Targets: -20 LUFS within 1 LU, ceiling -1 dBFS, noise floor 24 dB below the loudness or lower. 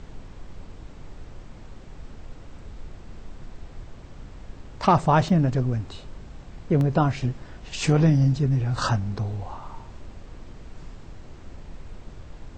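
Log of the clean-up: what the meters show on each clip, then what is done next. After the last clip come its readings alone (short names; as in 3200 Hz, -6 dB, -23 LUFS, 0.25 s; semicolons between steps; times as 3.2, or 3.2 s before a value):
dropouts 3; longest dropout 1.3 ms; noise floor -44 dBFS; noise floor target -47 dBFS; loudness -23.0 LUFS; peak -7.0 dBFS; loudness target -20.0 LUFS
-> interpolate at 5.29/6.81/9.33, 1.3 ms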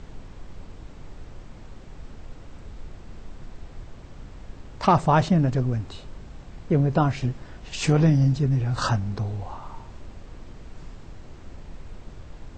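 dropouts 0; noise floor -44 dBFS; noise floor target -47 dBFS
-> noise print and reduce 6 dB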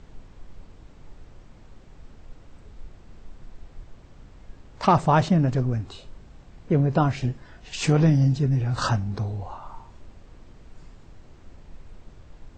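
noise floor -50 dBFS; loudness -23.0 LUFS; peak -7.0 dBFS; loudness target -20.0 LUFS
-> gain +3 dB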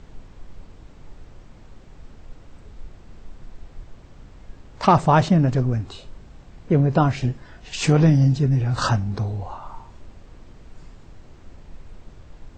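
loudness -20.0 LUFS; peak -4.0 dBFS; noise floor -47 dBFS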